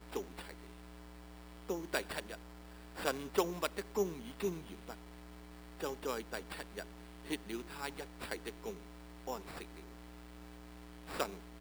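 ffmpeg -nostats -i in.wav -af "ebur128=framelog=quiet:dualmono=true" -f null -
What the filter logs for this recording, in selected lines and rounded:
Integrated loudness:
  I:         -38.5 LUFS
  Threshold: -49.6 LUFS
Loudness range:
  LRA:         7.2 LU
  Threshold: -59.1 LUFS
  LRA low:   -43.3 LUFS
  LRA high:  -36.1 LUFS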